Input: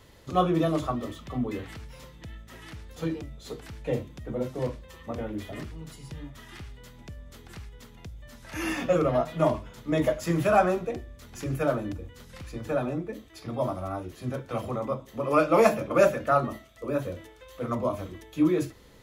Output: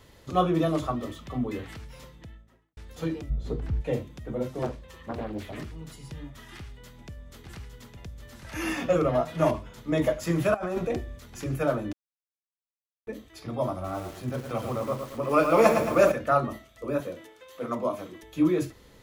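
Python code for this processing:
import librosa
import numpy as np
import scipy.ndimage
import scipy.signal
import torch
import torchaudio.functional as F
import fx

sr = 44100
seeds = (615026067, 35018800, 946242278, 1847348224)

y = fx.studio_fade_out(x, sr, start_s=1.99, length_s=0.78)
y = fx.tilt_eq(y, sr, slope=-4.0, at=(3.29, 3.8), fade=0.02)
y = fx.doppler_dist(y, sr, depth_ms=0.76, at=(4.62, 5.58))
y = fx.echo_single(y, sr, ms=859, db=-6.5, at=(6.58, 9.51))
y = fx.over_compress(y, sr, threshold_db=-30.0, ratio=-1.0, at=(10.54, 11.19))
y = fx.echo_crushed(y, sr, ms=111, feedback_pct=55, bits=7, wet_db=-6, at=(13.73, 16.12))
y = fx.highpass(y, sr, hz=200.0, slope=12, at=(17.0, 18.23))
y = fx.edit(y, sr, fx.silence(start_s=11.93, length_s=1.14), tone=tone)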